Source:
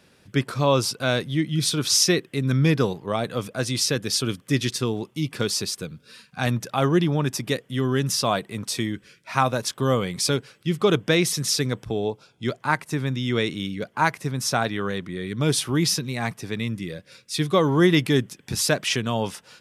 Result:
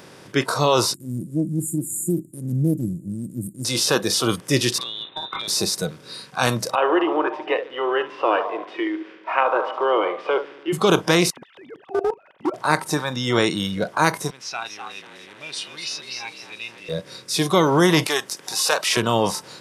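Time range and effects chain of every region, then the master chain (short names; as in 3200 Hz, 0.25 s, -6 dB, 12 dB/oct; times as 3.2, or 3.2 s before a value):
0.94–3.65 brick-wall FIR band-stop 350–6800 Hz + fixed phaser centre 2200 Hz, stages 4 + Doppler distortion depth 0.11 ms
4.78–5.48 inverted band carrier 3800 Hz + compressor, threshold -31 dBFS
6.75–10.73 Chebyshev band-pass 310–3000 Hz, order 5 + feedback echo 72 ms, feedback 55%, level -16 dB
11.3–12.54 sine-wave speech + level quantiser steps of 22 dB + hard clip -21 dBFS
14.3–16.89 band-pass 2600 Hz, Q 5 + frequency-shifting echo 0.248 s, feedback 51%, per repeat +65 Hz, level -6 dB
18.07–18.97 HPF 680 Hz + upward compressor, threshold -39 dBFS
whole clip: per-bin compression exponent 0.4; spectral noise reduction 16 dB; gain -1.5 dB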